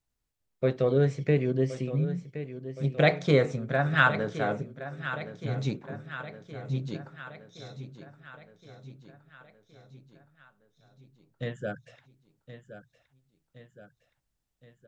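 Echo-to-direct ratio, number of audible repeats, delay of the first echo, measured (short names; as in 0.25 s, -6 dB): -11.0 dB, 5, 1.069 s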